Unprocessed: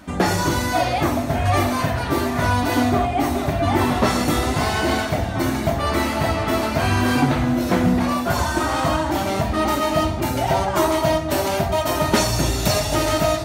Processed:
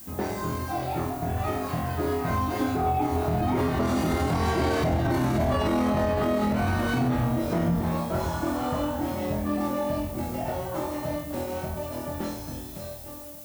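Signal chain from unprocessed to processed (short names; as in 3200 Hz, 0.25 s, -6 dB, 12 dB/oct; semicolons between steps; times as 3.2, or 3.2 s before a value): ending faded out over 1.91 s; Doppler pass-by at 5.19, 20 m/s, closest 11 m; on a send: flutter echo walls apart 4.1 m, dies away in 0.46 s; on the sum: added noise violet -45 dBFS; in parallel at -1 dB: compressor, threshold -37 dBFS, peak gain reduction 20 dB; on the sum: tilt shelf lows +5 dB, about 1200 Hz; limiter -16.5 dBFS, peak gain reduction 12.5 dB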